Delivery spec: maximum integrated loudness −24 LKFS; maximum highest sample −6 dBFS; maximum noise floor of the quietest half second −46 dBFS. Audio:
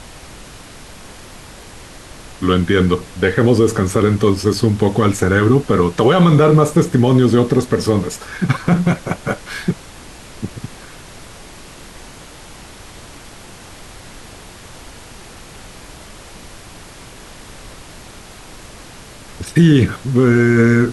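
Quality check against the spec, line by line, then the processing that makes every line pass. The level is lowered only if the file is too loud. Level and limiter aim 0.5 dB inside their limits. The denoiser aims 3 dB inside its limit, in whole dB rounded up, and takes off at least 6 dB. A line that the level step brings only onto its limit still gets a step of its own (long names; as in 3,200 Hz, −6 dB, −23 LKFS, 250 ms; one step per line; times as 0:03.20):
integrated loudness −15.0 LKFS: out of spec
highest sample −2.5 dBFS: out of spec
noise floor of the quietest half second −37 dBFS: out of spec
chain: level −9.5 dB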